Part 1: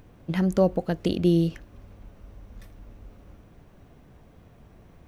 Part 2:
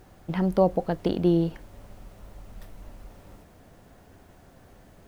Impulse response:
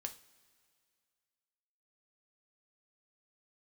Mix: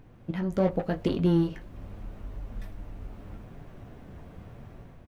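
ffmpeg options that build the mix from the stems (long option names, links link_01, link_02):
-filter_complex "[0:a]volume=-0.5dB,asplit=2[link_01][link_02];[link_02]volume=-12.5dB[link_03];[1:a]asoftclip=type=tanh:threshold=-24.5dB,adelay=19,volume=-8.5dB,asplit=2[link_04][link_05];[link_05]apad=whole_len=223618[link_06];[link_01][link_06]sidechaincompress=threshold=-48dB:ratio=4:attack=16:release=502[link_07];[2:a]atrim=start_sample=2205[link_08];[link_03][link_08]afir=irnorm=-1:irlink=0[link_09];[link_07][link_04][link_09]amix=inputs=3:normalize=0,flanger=delay=7:depth=4.6:regen=-48:speed=0.83:shape=triangular,bass=frequency=250:gain=2,treble=frequency=4000:gain=-7,dynaudnorm=framelen=200:gausssize=5:maxgain=8dB"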